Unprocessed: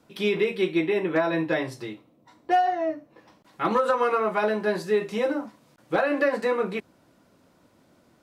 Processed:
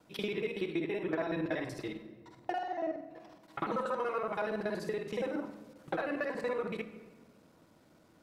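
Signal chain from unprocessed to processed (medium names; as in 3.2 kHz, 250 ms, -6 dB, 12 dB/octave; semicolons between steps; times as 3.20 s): time reversed locally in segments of 47 ms; compression 2.5:1, threshold -32 dBFS, peak gain reduction 10 dB; simulated room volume 1100 m³, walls mixed, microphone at 0.61 m; trim -3.5 dB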